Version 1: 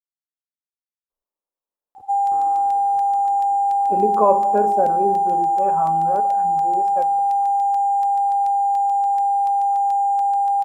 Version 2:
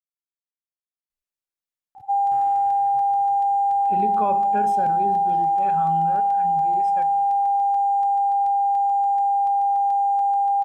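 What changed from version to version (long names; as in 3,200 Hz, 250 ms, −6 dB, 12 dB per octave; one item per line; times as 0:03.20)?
speech: add graphic EQ with 10 bands 125 Hz +9 dB, 250 Hz −5 dB, 500 Hz −11 dB, 1,000 Hz −11 dB, 2,000 Hz +10 dB, 4,000 Hz +8 dB, 8,000 Hz +5 dB
background: add high-shelf EQ 2,200 Hz −11.5 dB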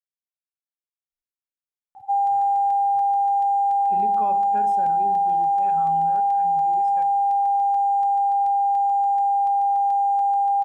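speech −7.0 dB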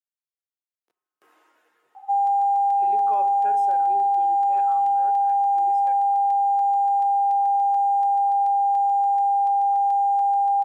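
speech: entry −1.10 s
master: add high-pass filter 370 Hz 24 dB per octave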